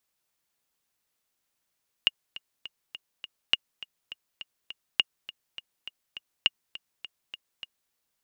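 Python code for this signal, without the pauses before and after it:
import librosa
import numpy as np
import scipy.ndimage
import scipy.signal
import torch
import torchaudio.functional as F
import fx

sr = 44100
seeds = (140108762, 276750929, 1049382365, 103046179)

y = fx.click_track(sr, bpm=205, beats=5, bars=4, hz=2850.0, accent_db=18.0, level_db=-7.0)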